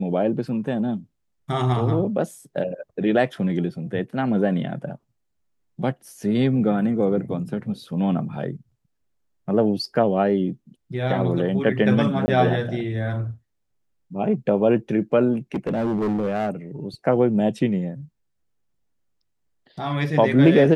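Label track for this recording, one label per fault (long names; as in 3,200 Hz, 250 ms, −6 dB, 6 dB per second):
12.260000	12.280000	drop-out 20 ms
15.330000	16.500000	clipping −19.5 dBFS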